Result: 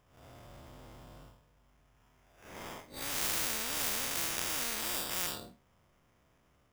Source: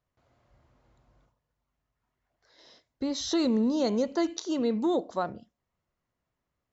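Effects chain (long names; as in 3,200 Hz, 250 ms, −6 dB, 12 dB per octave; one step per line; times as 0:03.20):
spectrum smeared in time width 121 ms
0:03.21–0:05.27: parametric band 2,500 Hz +14.5 dB 0.9 octaves
sample-rate reduction 4,200 Hz, jitter 0%
every bin compressed towards the loudest bin 10 to 1
level +4 dB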